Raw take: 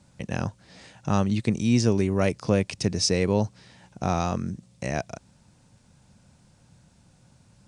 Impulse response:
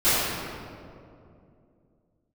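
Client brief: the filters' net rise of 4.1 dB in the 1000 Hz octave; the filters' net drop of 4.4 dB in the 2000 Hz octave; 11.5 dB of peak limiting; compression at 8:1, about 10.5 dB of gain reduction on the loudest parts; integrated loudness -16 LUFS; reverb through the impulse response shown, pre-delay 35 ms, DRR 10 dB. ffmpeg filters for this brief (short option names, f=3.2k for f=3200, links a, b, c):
-filter_complex "[0:a]equalizer=f=1k:t=o:g=7.5,equalizer=f=2k:t=o:g=-8,acompressor=threshold=-26dB:ratio=8,alimiter=level_in=0.5dB:limit=-24dB:level=0:latency=1,volume=-0.5dB,asplit=2[a][b];[1:a]atrim=start_sample=2205,adelay=35[c];[b][c]afir=irnorm=-1:irlink=0,volume=-29dB[d];[a][d]amix=inputs=2:normalize=0,volume=21dB"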